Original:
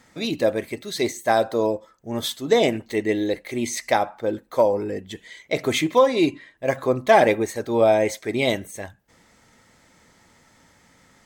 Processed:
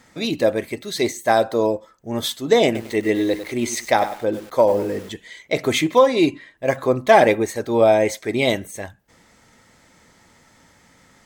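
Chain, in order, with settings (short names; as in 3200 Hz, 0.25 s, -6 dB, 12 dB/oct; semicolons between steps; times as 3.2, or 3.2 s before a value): 2.65–5.12 lo-fi delay 99 ms, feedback 35%, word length 6-bit, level -10.5 dB; gain +2.5 dB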